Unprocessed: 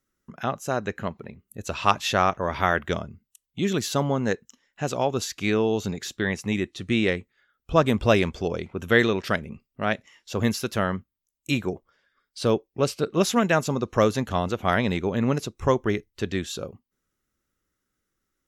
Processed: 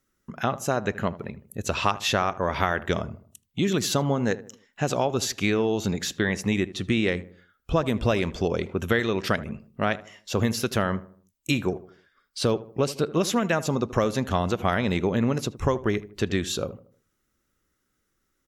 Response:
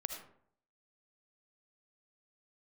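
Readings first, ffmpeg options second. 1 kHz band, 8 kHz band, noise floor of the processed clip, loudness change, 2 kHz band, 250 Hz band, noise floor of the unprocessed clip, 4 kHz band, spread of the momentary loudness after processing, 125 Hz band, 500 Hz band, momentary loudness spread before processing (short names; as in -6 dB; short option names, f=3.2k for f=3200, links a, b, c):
-2.0 dB, +2.0 dB, -75 dBFS, -1.0 dB, -1.5 dB, 0.0 dB, -82 dBFS, +1.0 dB, 7 LU, +0.5 dB, -1.0 dB, 12 LU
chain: -filter_complex "[0:a]acompressor=threshold=-24dB:ratio=6,asplit=2[a][b];[b]adelay=78,lowpass=f=1.3k:p=1,volume=-15.5dB,asplit=2[c][d];[d]adelay=78,lowpass=f=1.3k:p=1,volume=0.44,asplit=2[e][f];[f]adelay=78,lowpass=f=1.3k:p=1,volume=0.44,asplit=2[g][h];[h]adelay=78,lowpass=f=1.3k:p=1,volume=0.44[i];[a][c][e][g][i]amix=inputs=5:normalize=0,volume=4.5dB"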